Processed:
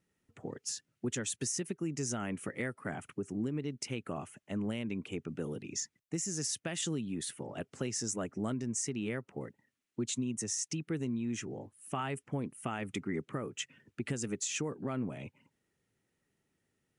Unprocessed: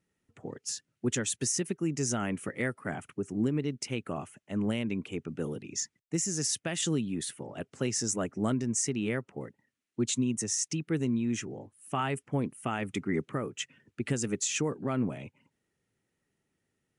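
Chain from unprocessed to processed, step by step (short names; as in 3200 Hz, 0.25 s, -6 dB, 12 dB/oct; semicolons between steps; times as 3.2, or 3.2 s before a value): compressor 2:1, threshold -36 dBFS, peak gain reduction 7 dB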